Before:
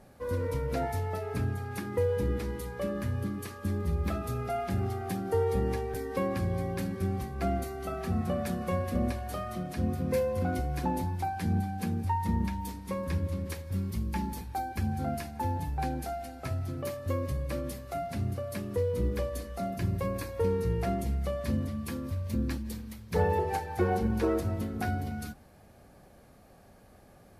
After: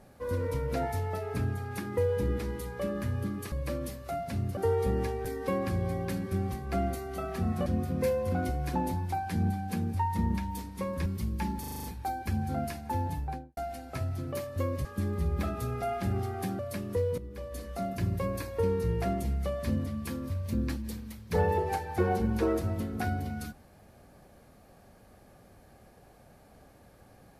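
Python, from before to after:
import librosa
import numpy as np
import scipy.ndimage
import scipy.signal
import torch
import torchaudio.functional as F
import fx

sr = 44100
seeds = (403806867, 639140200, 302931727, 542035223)

y = fx.studio_fade_out(x, sr, start_s=15.63, length_s=0.44)
y = fx.edit(y, sr, fx.swap(start_s=3.52, length_s=1.74, other_s=17.35, other_length_s=1.05),
    fx.cut(start_s=8.35, length_s=1.41),
    fx.cut(start_s=13.16, length_s=0.64),
    fx.stutter(start_s=14.34, slice_s=0.04, count=7),
    fx.fade_in_from(start_s=18.99, length_s=0.48, curve='qua', floor_db=-14.5), tone=tone)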